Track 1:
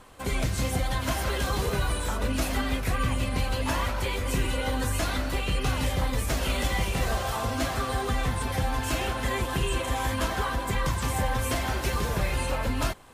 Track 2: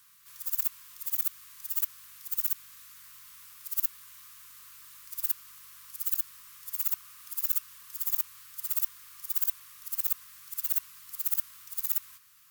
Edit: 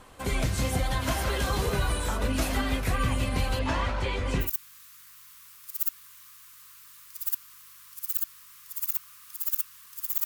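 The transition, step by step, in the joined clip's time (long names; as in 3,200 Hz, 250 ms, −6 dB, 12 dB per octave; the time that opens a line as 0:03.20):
track 1
0:03.59–0:04.51: high-frequency loss of the air 91 metres
0:04.44: continue with track 2 from 0:02.41, crossfade 0.14 s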